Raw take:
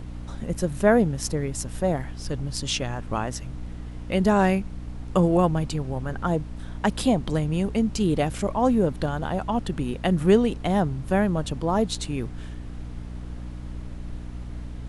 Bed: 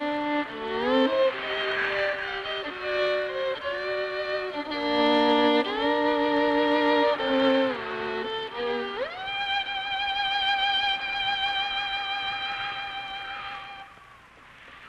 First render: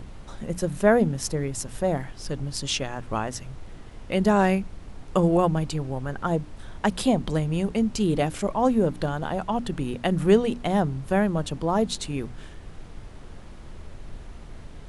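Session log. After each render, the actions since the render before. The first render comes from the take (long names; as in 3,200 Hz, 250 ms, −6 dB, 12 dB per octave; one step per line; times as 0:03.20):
mains-hum notches 60/120/180/240/300 Hz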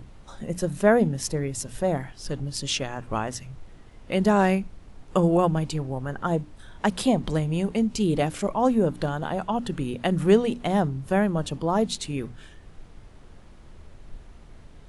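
noise reduction from a noise print 6 dB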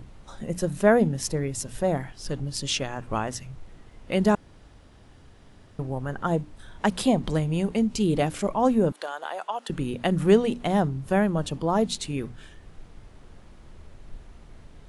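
0:04.35–0:05.79: fill with room tone
0:08.92–0:09.70: Bessel high-pass filter 700 Hz, order 4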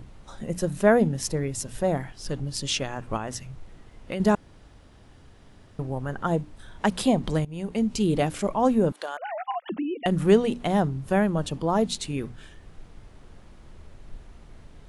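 0:03.16–0:04.20: downward compressor, threshold −26 dBFS
0:07.45–0:07.88: fade in, from −18.5 dB
0:09.17–0:10.06: three sine waves on the formant tracks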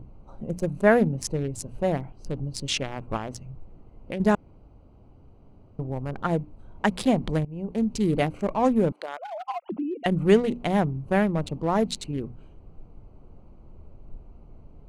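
adaptive Wiener filter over 25 samples
dynamic equaliser 2,100 Hz, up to +5 dB, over −48 dBFS, Q 1.8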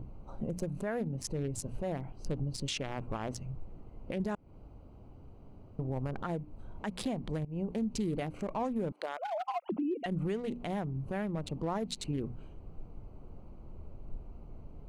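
downward compressor 6 to 1, threshold −29 dBFS, peak gain reduction 15.5 dB
brickwall limiter −25.5 dBFS, peak gain reduction 11.5 dB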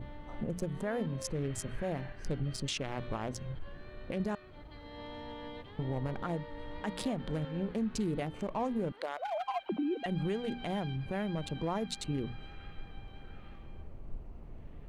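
mix in bed −24.5 dB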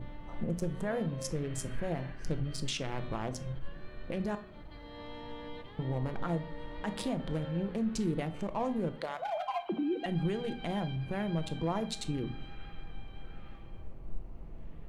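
rectangular room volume 470 cubic metres, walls furnished, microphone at 0.72 metres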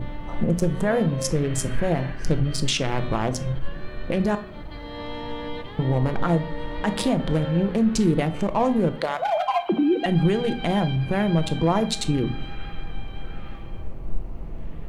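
level +12 dB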